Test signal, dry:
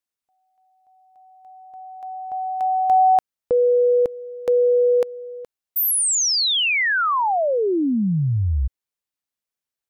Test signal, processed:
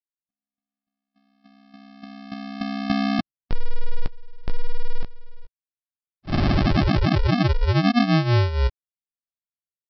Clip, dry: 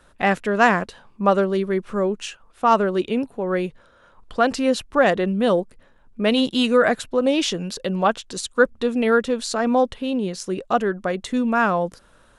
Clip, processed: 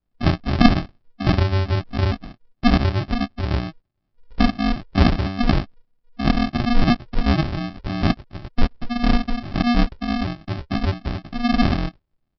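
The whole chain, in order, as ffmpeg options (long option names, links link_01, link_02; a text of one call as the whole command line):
ffmpeg -i in.wav -filter_complex "[0:a]afftdn=noise_reduction=23:noise_floor=-31,asplit=2[link_01][link_02];[link_02]adelay=18,volume=-4.5dB[link_03];[link_01][link_03]amix=inputs=2:normalize=0,aresample=11025,acrusher=samples=23:mix=1:aa=0.000001,aresample=44100" out.wav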